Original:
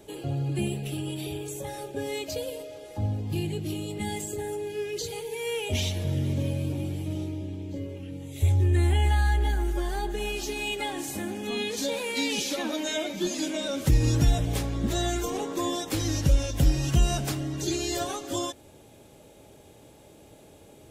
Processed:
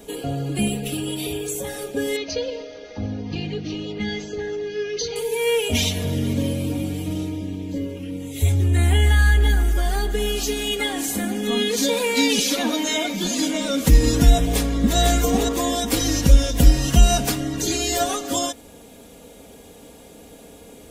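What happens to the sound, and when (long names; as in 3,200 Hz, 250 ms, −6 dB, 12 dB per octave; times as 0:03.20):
0:02.16–0:05.16: Chebyshev low-pass with heavy ripple 6,300 Hz, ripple 3 dB
0:14.44–0:14.98: delay throw 500 ms, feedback 40%, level −4 dB
whole clip: high-shelf EQ 10,000 Hz +5 dB; comb filter 4.2 ms, depth 70%; level +6.5 dB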